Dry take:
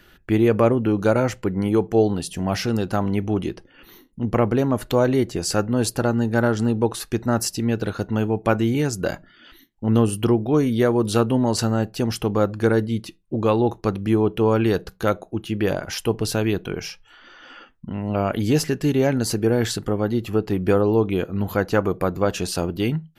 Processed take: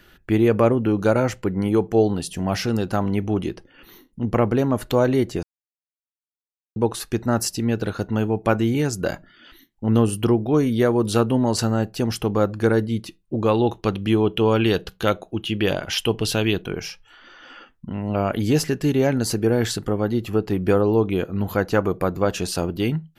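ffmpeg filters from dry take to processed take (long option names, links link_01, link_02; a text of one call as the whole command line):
ffmpeg -i in.wav -filter_complex "[0:a]asettb=1/sr,asplit=3[link_01][link_02][link_03];[link_01]atrim=end=13.544[link_04];[link_02]atrim=start=13.54:end=16.62,asetpts=PTS-STARTPTS,afade=type=in:duration=0.004:curve=qsin,afade=type=out:start_time=3.076:duration=0.004:curve=qsin,equalizer=frequency=3100:width_type=o:width=0.67:gain=11[link_05];[link_03]atrim=start=16.616[link_06];[link_04][link_05]acrossfade=duration=0.004:curve1=hsin:curve2=qsin[link_07];[link_07][link_06]acrossfade=duration=0.004:curve1=qsin:curve2=hsin,asplit=3[link_08][link_09][link_10];[link_08]atrim=end=5.43,asetpts=PTS-STARTPTS,afade=type=out:start_time=5.426:duration=0.004:curve=hsin[link_11];[link_09]atrim=start=5.43:end=6.76,asetpts=PTS-STARTPTS,volume=0[link_12];[link_10]atrim=start=6.76,asetpts=PTS-STARTPTS,afade=type=in:duration=0.004:curve=hsin[link_13];[link_11][link_12][link_13]concat=n=3:v=0:a=1" out.wav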